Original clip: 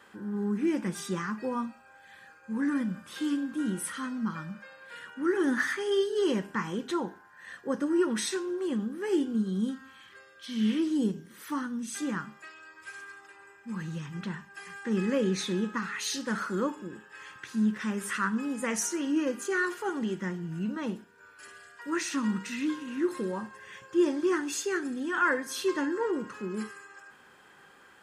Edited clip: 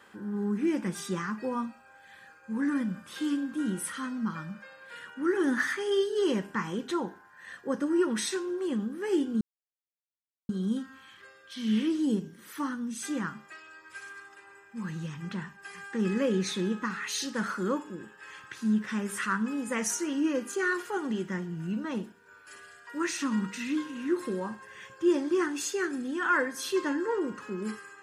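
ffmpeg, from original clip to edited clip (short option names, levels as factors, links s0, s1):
-filter_complex "[0:a]asplit=2[s0][s1];[s0]atrim=end=9.41,asetpts=PTS-STARTPTS,afade=t=out:st=9.406:d=0.004:c=hsin,apad=pad_dur=1.08[s2];[s1]atrim=start=9.41,asetpts=PTS-STARTPTS,afade=t=in:d=0.004:c=hsin[s3];[s2][s3]concat=n=2:v=0:a=1"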